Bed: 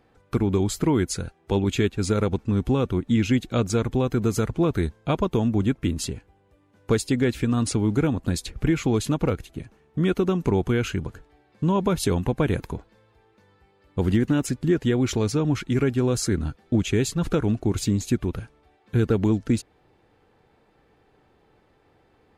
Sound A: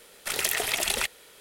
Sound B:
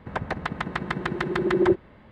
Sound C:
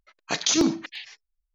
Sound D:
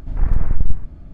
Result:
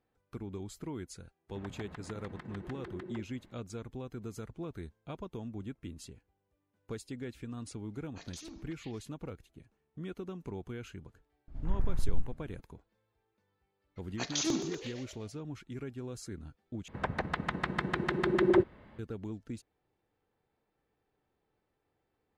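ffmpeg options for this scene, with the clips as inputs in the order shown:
-filter_complex "[2:a]asplit=2[a][b];[3:a]asplit=2[c][d];[0:a]volume=-19.5dB[e];[a]acompressor=threshold=-29dB:ratio=6:attack=3.2:release=140:knee=1:detection=peak[f];[c]acompressor=threshold=-28dB:ratio=4:attack=1.9:release=102:knee=1:detection=rms[g];[d]asplit=7[h][i][j][k][l][m][n];[i]adelay=121,afreqshift=61,volume=-10dB[o];[j]adelay=242,afreqshift=122,volume=-15.4dB[p];[k]adelay=363,afreqshift=183,volume=-20.7dB[q];[l]adelay=484,afreqshift=244,volume=-26.1dB[r];[m]adelay=605,afreqshift=305,volume=-31.4dB[s];[n]adelay=726,afreqshift=366,volume=-36.8dB[t];[h][o][p][q][r][s][t]amix=inputs=7:normalize=0[u];[e]asplit=2[v][w];[v]atrim=end=16.884[x];[b]atrim=end=2.11,asetpts=PTS-STARTPTS,volume=-4.5dB[y];[w]atrim=start=18.986[z];[f]atrim=end=2.11,asetpts=PTS-STARTPTS,volume=-13dB,afade=t=in:d=0.004:c=hsin,afade=t=out:st=2.106:d=0.004:c=hsin,adelay=1490[aa];[g]atrim=end=1.54,asetpts=PTS-STARTPTS,volume=-18dB,afade=t=in:d=0.004:c=hsin,afade=t=out:st=1.536:d=0.004:c=hsin,adelay=7870[ab];[4:a]atrim=end=1.13,asetpts=PTS-STARTPTS,volume=-14dB,afade=t=in:d=0.004:c=hsin,afade=t=out:st=1.126:d=0.004:c=hsin,adelay=11480[ac];[u]atrim=end=1.54,asetpts=PTS-STARTPTS,volume=-11dB,afade=t=in:d=0.004:c=hsin,afade=t=out:st=1.536:d=0.004:c=hsin,adelay=13890[ad];[x][y]acrossfade=d=0.004:c1=hsin:c2=hsin[ae];[ae][z]acrossfade=d=0.004:c1=hsin:c2=hsin[af];[af][aa][ab][ac][ad]amix=inputs=5:normalize=0"

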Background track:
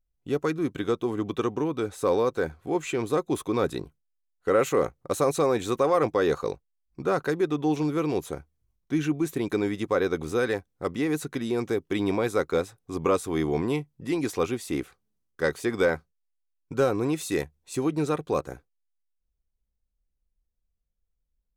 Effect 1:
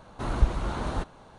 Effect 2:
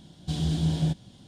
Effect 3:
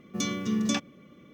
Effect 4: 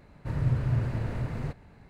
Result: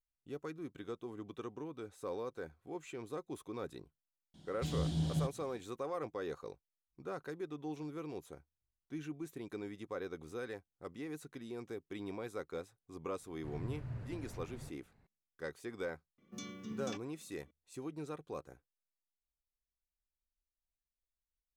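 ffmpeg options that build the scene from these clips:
-filter_complex "[0:a]volume=-17.5dB[a];[2:a]atrim=end=1.27,asetpts=PTS-STARTPTS,volume=-9dB,afade=t=in:d=0.004:c=hsin,afade=t=out:st=1.266:d=0.004:c=hsin,adelay=4340[b];[4:a]atrim=end=1.89,asetpts=PTS-STARTPTS,volume=-16.5dB,afade=t=in:d=0.004:c=hsin,afade=t=out:st=1.886:d=0.004:c=hsin,adelay=13180[c];[3:a]atrim=end=1.33,asetpts=PTS-STARTPTS,volume=-16.5dB,afade=t=in:d=0.004:c=hsin,afade=t=out:st=1.326:d=0.004:c=hsin,adelay=16180[d];[a][b][c][d]amix=inputs=4:normalize=0"

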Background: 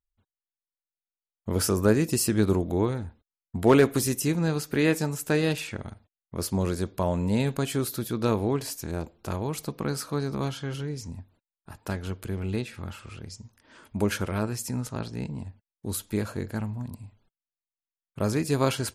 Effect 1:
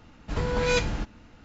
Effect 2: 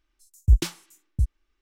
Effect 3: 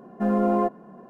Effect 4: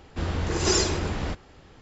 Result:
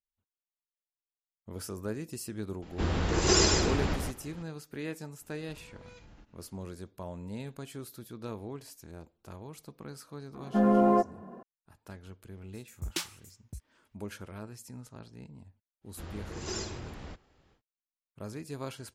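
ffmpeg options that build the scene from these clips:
-filter_complex "[4:a]asplit=2[a][b];[0:a]volume=-15dB[c];[a]aecho=1:1:146:0.596[d];[1:a]acompressor=threshold=-36dB:ratio=6:attack=3.2:release=140:knee=1:detection=peak[e];[2:a]highpass=f=680:p=1[f];[d]atrim=end=1.81,asetpts=PTS-STARTPTS,volume=-1.5dB,afade=t=in:d=0.004:c=hsin,afade=t=out:st=1.806:d=0.004:c=hsin,adelay=2620[g];[e]atrim=end=1.44,asetpts=PTS-STARTPTS,volume=-14.5dB,afade=t=in:d=0.004:c=hsin,afade=t=out:st=1.436:d=0.004:c=hsin,adelay=5200[h];[3:a]atrim=end=1.09,asetpts=PTS-STARTPTS,volume=-1dB,afade=t=in:d=0.004:c=hsin,afade=t=out:st=1.086:d=0.004:c=hsin,adelay=455994S[i];[f]atrim=end=1.61,asetpts=PTS-STARTPTS,volume=-1.5dB,afade=t=in:d=0.004:c=hsin,afade=t=out:st=1.606:d=0.004:c=hsin,adelay=12340[j];[b]atrim=end=1.81,asetpts=PTS-STARTPTS,volume=-14.5dB,afade=t=in:d=0.1,afade=t=out:st=1.71:d=0.1,adelay=15810[k];[c][g][h][i][j][k]amix=inputs=6:normalize=0"

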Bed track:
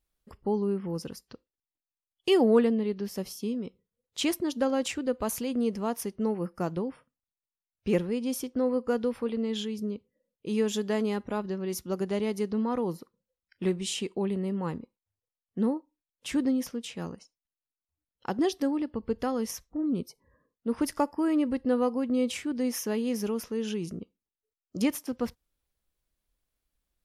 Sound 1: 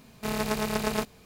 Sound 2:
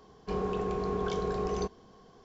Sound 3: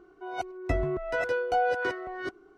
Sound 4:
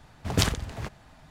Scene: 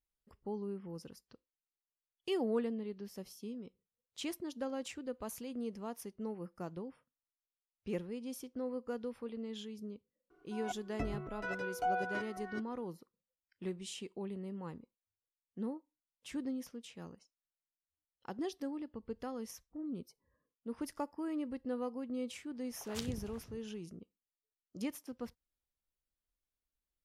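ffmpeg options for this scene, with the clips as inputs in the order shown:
-filter_complex "[0:a]volume=-12.5dB[a];[3:a]aecho=1:1:6.9:0.65[b];[4:a]acrossover=split=460|1900[c][d][e];[e]adelay=60[f];[c]adelay=190[g];[g][d][f]amix=inputs=3:normalize=0[h];[b]atrim=end=2.57,asetpts=PTS-STARTPTS,volume=-11dB,afade=t=in:d=0.004:c=hsin,afade=t=out:st=2.566:d=0.004:c=hsin,adelay=10300[i];[h]atrim=end=1.3,asetpts=PTS-STARTPTS,volume=-17dB,afade=t=in:d=0.004:c=hsin,afade=t=out:st=1.296:d=0.004:c=hsin,adelay=22510[j];[a][i][j]amix=inputs=3:normalize=0"

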